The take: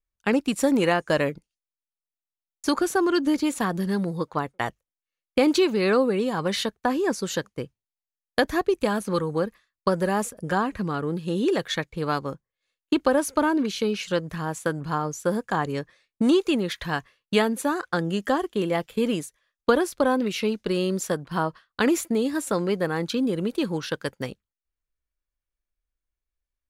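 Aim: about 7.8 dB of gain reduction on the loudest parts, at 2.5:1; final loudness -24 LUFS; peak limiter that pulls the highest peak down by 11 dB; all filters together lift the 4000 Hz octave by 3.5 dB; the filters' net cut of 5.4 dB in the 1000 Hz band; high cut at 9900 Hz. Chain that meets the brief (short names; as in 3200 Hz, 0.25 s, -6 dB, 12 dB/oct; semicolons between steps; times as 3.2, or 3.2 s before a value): LPF 9900 Hz; bell 1000 Hz -7.5 dB; bell 4000 Hz +5 dB; compressor 2.5:1, threshold -28 dBFS; gain +9 dB; limiter -13 dBFS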